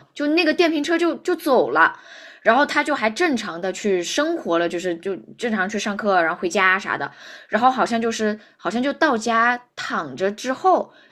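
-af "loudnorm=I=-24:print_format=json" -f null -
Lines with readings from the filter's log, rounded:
"input_i" : "-20.6",
"input_tp" : "-2.0",
"input_lra" : "1.8",
"input_thresh" : "-30.7",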